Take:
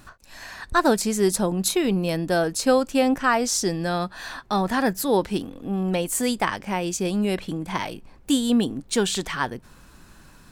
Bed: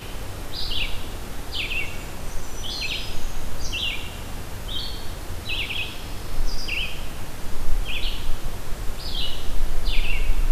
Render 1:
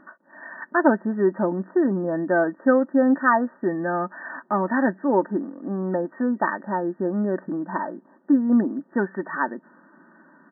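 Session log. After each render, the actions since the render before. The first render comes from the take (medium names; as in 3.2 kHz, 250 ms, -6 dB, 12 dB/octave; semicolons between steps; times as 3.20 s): comb 3.3 ms, depth 59%; FFT band-pass 160–1900 Hz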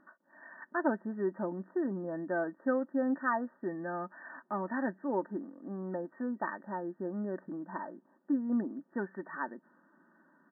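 trim -12.5 dB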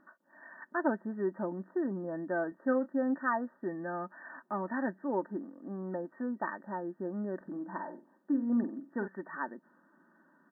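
2.49–2.94 s: doubling 27 ms -11 dB; 7.36–9.08 s: flutter echo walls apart 8 m, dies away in 0.29 s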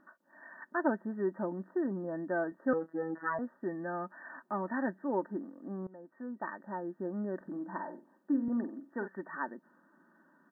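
2.73–3.39 s: robot voice 162 Hz; 5.87–7.22 s: fade in equal-power, from -21 dB; 8.48–9.16 s: Bessel high-pass 270 Hz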